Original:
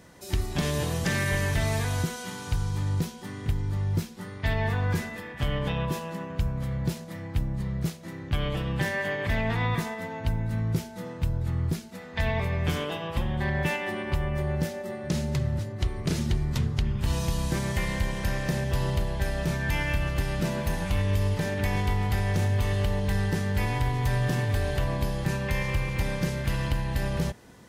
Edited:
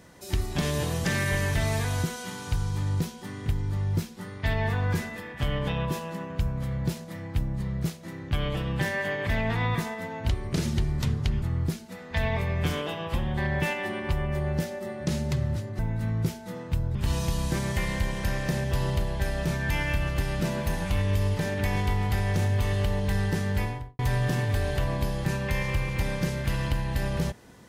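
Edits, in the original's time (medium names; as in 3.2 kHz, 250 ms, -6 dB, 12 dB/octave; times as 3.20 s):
10.29–11.45 s: swap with 15.82–16.95 s
23.52–23.99 s: studio fade out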